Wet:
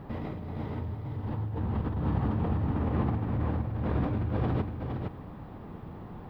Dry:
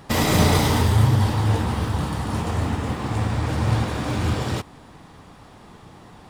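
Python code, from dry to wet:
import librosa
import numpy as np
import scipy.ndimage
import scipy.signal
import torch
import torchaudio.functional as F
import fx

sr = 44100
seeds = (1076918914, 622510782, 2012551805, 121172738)

y = fx.over_compress(x, sr, threshold_db=-28.0, ratio=-1.0)
y = fx.tilt_shelf(y, sr, db=4.5, hz=840.0)
y = fx.dmg_noise_colour(y, sr, seeds[0], colour='violet', level_db=-44.0)
y = fx.air_absorb(y, sr, metres=430.0)
y = y + 10.0 ** (-5.0 / 20.0) * np.pad(y, (int(464 * sr / 1000.0), 0))[:len(y)]
y = F.gain(torch.from_numpy(y), -7.0).numpy()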